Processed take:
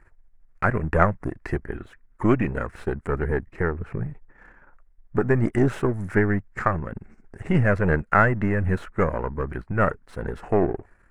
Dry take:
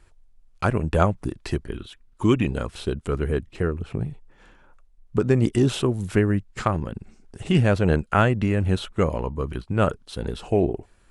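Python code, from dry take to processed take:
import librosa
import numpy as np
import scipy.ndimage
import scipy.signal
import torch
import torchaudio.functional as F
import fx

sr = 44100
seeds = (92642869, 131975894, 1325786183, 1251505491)

y = np.where(x < 0.0, 10.0 ** (-7.0 / 20.0) * x, x)
y = fx.high_shelf_res(y, sr, hz=2500.0, db=-10.5, q=3.0)
y = y * librosa.db_to_amplitude(2.0)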